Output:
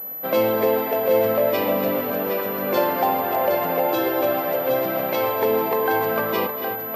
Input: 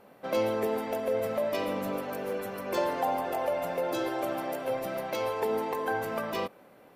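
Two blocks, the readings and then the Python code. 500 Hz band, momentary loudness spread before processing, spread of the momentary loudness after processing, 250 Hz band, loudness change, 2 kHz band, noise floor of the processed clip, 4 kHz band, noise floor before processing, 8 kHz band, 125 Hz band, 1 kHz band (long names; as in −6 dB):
+9.5 dB, 5 LU, 4 LU, +9.0 dB, +10.0 dB, +9.0 dB, −30 dBFS, +8.0 dB, −56 dBFS, can't be measured, +8.5 dB, +9.0 dB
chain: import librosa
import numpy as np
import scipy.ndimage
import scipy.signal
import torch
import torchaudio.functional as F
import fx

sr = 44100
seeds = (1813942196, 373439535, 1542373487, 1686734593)

p1 = scipy.signal.sosfilt(scipy.signal.butter(2, 80.0, 'highpass', fs=sr, output='sos'), x)
p2 = p1 + fx.echo_multitap(p1, sr, ms=(240, 284, 765), db=(-15.0, -9.5, -7.5), dry=0)
p3 = fx.pwm(p2, sr, carrier_hz=12000.0)
y = F.gain(torch.from_numpy(p3), 8.0).numpy()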